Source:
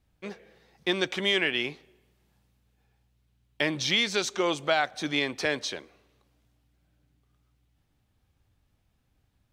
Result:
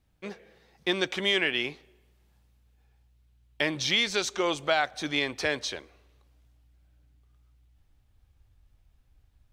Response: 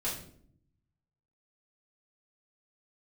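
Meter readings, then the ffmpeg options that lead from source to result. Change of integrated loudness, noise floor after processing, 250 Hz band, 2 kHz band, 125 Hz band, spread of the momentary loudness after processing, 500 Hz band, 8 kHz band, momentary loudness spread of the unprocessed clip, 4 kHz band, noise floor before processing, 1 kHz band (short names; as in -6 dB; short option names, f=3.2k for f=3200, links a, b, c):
-0.5 dB, -66 dBFS, -1.5 dB, 0.0 dB, -1.5 dB, 12 LU, -0.5 dB, 0.0 dB, 12 LU, 0.0 dB, -72 dBFS, 0.0 dB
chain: -af "asubboost=boost=5:cutoff=73"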